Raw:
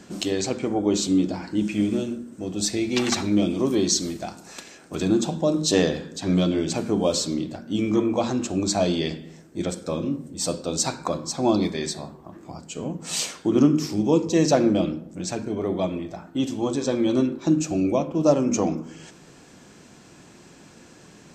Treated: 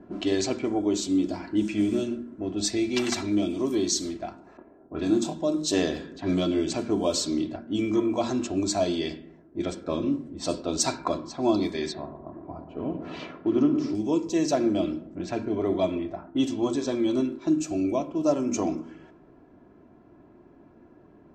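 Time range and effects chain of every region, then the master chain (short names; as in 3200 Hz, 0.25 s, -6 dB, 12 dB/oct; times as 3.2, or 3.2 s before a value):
4.57–5.33 low-pass opened by the level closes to 760 Hz, open at -19 dBFS + doubler 25 ms -5 dB
11.92–13.95 Gaussian blur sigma 1.8 samples + dark delay 0.117 s, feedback 74%, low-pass 1500 Hz, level -9 dB
whole clip: low-pass opened by the level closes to 770 Hz, open at -19 dBFS; comb 3 ms, depth 49%; vocal rider within 3 dB 0.5 s; gain -4 dB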